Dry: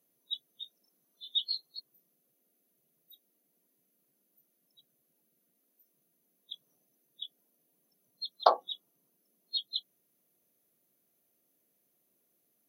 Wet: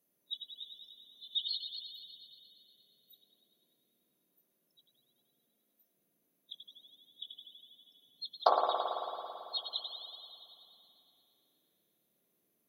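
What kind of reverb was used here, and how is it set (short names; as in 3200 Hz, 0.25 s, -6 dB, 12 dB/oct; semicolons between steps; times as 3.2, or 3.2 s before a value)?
spring tank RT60 2.8 s, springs 55 ms, chirp 65 ms, DRR -1.5 dB; gain -4 dB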